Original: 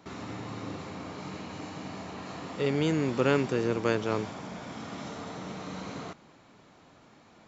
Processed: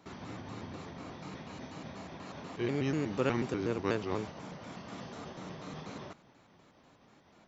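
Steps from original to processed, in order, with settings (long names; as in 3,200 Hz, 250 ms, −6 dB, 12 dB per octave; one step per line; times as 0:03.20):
pitch shifter gated in a rhythm −3 semitones, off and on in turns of 122 ms
level −4.5 dB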